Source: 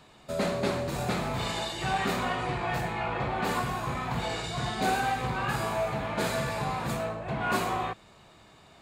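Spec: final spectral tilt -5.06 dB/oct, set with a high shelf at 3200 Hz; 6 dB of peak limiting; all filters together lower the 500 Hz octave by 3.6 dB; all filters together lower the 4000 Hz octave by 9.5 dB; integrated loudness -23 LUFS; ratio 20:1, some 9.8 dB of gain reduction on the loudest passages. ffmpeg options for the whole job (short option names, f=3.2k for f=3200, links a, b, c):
-af "equalizer=f=500:t=o:g=-4.5,highshelf=f=3.2k:g=-8,equalizer=f=4k:t=o:g=-6.5,acompressor=threshold=-35dB:ratio=20,volume=18dB,alimiter=limit=-14dB:level=0:latency=1"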